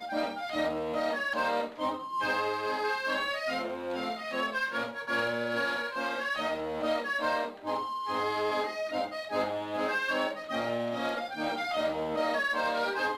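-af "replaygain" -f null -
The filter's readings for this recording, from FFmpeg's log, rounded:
track_gain = +13.5 dB
track_peak = 0.088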